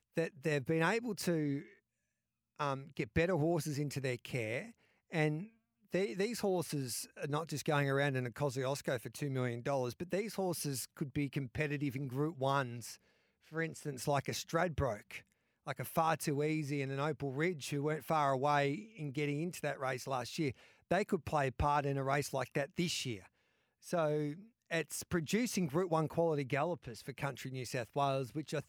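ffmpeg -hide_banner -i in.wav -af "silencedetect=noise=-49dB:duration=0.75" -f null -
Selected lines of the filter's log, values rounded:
silence_start: 1.66
silence_end: 2.60 | silence_duration: 0.94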